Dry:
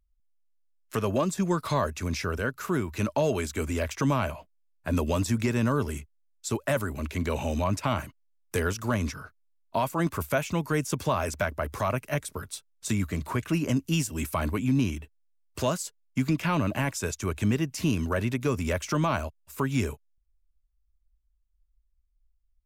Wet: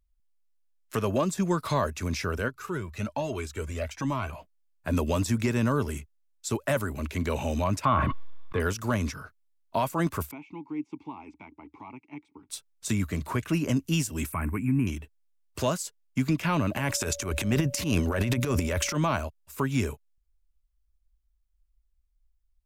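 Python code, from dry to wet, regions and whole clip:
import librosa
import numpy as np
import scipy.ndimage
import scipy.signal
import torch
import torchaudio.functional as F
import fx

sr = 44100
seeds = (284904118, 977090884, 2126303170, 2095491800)

y = fx.chain(x, sr, fx.high_shelf(hz=11000.0, db=-6.5),
    fx.comb_cascade(direction='rising', hz=1.2), at=(2.48, 4.33))
y = fx.chain(y, sr, fx.air_absorb(metres=450.0),
    fx.small_body(hz=(1100.0, 3500.0), ring_ms=30, db=15),
    fx.sustainer(db_per_s=23.0), at=(7.85, 8.6))
y = fx.chain(y, sr, fx.vowel_filter(vowel='u'),
    fx.air_absorb(metres=78.0), at=(10.31, 12.5))
y = fx.chain(y, sr, fx.ellip_bandstop(low_hz=2400.0, high_hz=8300.0, order=3, stop_db=50),
    fx.peak_eq(hz=570.0, db=-12.5, octaves=0.73), at=(14.32, 14.87))
y = fx.transient(y, sr, attack_db=-10, sustain_db=12, at=(16.76, 18.96), fade=0.02)
y = fx.dmg_tone(y, sr, hz=570.0, level_db=-41.0, at=(16.76, 18.96), fade=0.02)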